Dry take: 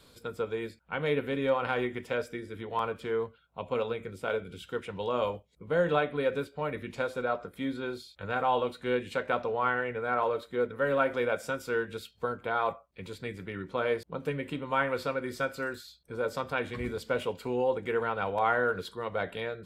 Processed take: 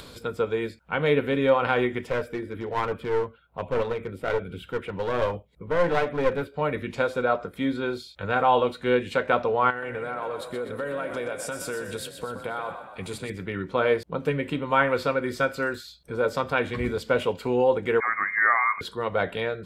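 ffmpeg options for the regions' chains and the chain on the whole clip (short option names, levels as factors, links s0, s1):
-filter_complex "[0:a]asettb=1/sr,asplit=3[s0][s1][s2];[s0]atrim=end=2.104[s3];[s1]atrim=start=2.1:end=6.54,asetpts=PTS-STARTPTS,afade=t=in:d=0.004:c=qsin,afade=t=out:st=4.436:d=0.004:c=qsin,equalizer=f=6100:t=o:w=1.2:g=-13,aphaser=in_gain=1:out_gain=1:delay=3.9:decay=0.2:speed=1.2:type=triangular,aeval=exprs='clip(val(0),-1,0.02)':c=same[s4];[s2]atrim=start=6.536[s5];[s3][s4]acrossfade=d=0.004:c1=hsin:c2=qsin[s6];[s6][s5]acrossfade=d=0.004:c1=qsin:c2=hsin,asettb=1/sr,asplit=3[s7][s8][s9];[s7]atrim=end=9.704[s10];[s8]atrim=start=9.7:end=13.3,asetpts=PTS-STARTPTS,afade=t=in:d=0.004:c=qsin,afade=t=out:st=3.596:d=0.004:c=qsin,equalizer=f=9400:t=o:w=0.92:g=14,acompressor=threshold=0.0178:ratio=6:attack=3.2:release=140:knee=1:detection=peak,asplit=7[s11][s12][s13][s14][s15][s16][s17];[s12]adelay=124,afreqshift=33,volume=0.376[s18];[s13]adelay=248,afreqshift=66,volume=0.188[s19];[s14]adelay=372,afreqshift=99,volume=0.0944[s20];[s15]adelay=496,afreqshift=132,volume=0.0468[s21];[s16]adelay=620,afreqshift=165,volume=0.0234[s22];[s17]adelay=744,afreqshift=198,volume=0.0117[s23];[s11][s18][s19][s20][s21][s22][s23]amix=inputs=7:normalize=0,atrim=end_sample=158760[s24];[s9]atrim=start=13.296[s25];[s10][s24]acrossfade=d=0.004:c1=hsin:c2=qsin[s26];[s26][s25]acrossfade=d=0.004:c1=qsin:c2=hsin,asettb=1/sr,asplit=3[s27][s28][s29];[s27]atrim=end=18.004[s30];[s28]atrim=start=18:end=18.81,asetpts=PTS-STARTPTS,afade=t=in:d=0.004:c=qsin,afade=t=out:st=0.806:d=0.004:c=qsin,highpass=580,lowpass=f=2200:t=q:w=0.5098,lowpass=f=2200:t=q:w=0.6013,lowpass=f=2200:t=q:w=0.9,lowpass=f=2200:t=q:w=2.563,afreqshift=-2600[s31];[s29]atrim=start=18.806[s32];[s30][s31]acrossfade=d=0.004:c1=hsin:c2=qsin[s33];[s33][s32]acrossfade=d=0.004:c1=qsin:c2=hsin,highshelf=f=7100:g=-5.5,acompressor=mode=upward:threshold=0.00631:ratio=2.5,volume=2.24"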